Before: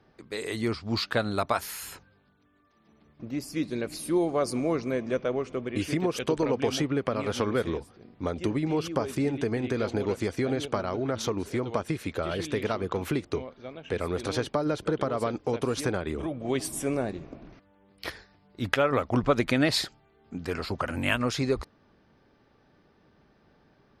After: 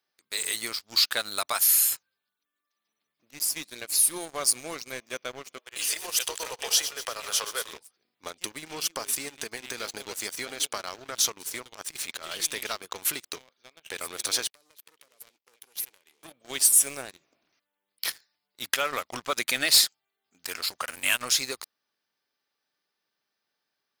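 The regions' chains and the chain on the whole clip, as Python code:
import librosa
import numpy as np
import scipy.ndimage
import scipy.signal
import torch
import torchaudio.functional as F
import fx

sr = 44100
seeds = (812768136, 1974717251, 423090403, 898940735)

y = fx.chain(x, sr, fx.reverse_delay_fb(ms=123, feedback_pct=59, wet_db=-10.5),
    fx.cheby2_highpass(hz=160.0, order=4, stop_db=50),
    fx.notch(hz=2200.0, q=11.0), at=(5.58, 7.73))
y = fx.chain(y, sr, fx.lowpass(hz=8600.0, slope=12),
    fx.over_compress(threshold_db=-33.0, ratio=-1.0), at=(11.72, 12.38))
y = fx.chain(y, sr, fx.curve_eq(hz=(120.0, 210.0, 490.0, 1300.0, 2000.0, 3300.0, 8400.0, 13000.0), db=(0, -2, -6, -30, -14, -18, -25, 8)),
    fx.leveller(passes=2),
    fx.bandpass_q(hz=3400.0, q=0.6), at=(14.5, 16.23))
y = np.diff(y, prepend=0.0)
y = fx.leveller(y, sr, passes=3)
y = fx.high_shelf(y, sr, hz=7500.0, db=5.0)
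y = y * 10.0 ** (2.5 / 20.0)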